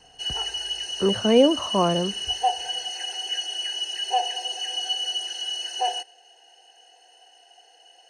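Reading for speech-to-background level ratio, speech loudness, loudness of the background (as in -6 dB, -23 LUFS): 5.0 dB, -22.0 LUFS, -27.0 LUFS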